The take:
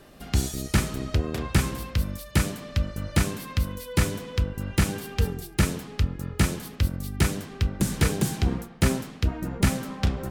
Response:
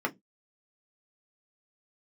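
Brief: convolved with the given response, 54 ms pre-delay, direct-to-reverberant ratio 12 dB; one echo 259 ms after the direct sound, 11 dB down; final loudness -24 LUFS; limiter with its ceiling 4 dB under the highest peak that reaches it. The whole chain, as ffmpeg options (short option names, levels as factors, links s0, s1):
-filter_complex "[0:a]alimiter=limit=0.178:level=0:latency=1,aecho=1:1:259:0.282,asplit=2[s0][s1];[1:a]atrim=start_sample=2205,adelay=54[s2];[s1][s2]afir=irnorm=-1:irlink=0,volume=0.0944[s3];[s0][s3]amix=inputs=2:normalize=0,volume=1.78"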